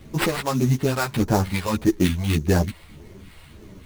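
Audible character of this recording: phasing stages 2, 1.7 Hz, lowest notch 230–4800 Hz; aliases and images of a low sample rate 6.3 kHz, jitter 20%; a shimmering, thickened sound

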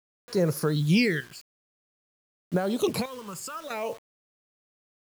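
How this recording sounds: chopped level 0.54 Hz, depth 65%, duty 65%; phasing stages 12, 0.52 Hz, lowest notch 620–3100 Hz; a quantiser's noise floor 8-bit, dither none

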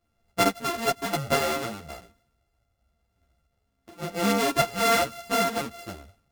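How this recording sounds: a buzz of ramps at a fixed pitch in blocks of 64 samples; tremolo triangle 1 Hz, depth 40%; a shimmering, thickened sound

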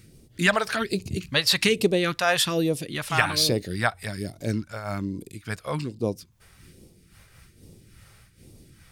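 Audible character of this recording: phasing stages 2, 1.2 Hz, lowest notch 270–1500 Hz; random flutter of the level

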